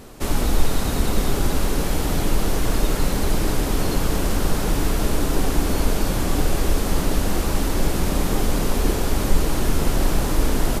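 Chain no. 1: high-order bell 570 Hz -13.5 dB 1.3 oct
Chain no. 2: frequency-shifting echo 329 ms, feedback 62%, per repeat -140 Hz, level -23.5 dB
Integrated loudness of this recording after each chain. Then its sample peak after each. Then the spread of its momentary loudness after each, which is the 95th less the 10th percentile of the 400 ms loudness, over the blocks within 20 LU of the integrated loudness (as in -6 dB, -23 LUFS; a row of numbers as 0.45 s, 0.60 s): -24.5 LUFS, -23.5 LUFS; -4.0 dBFS, -4.0 dBFS; 1 LU, 1 LU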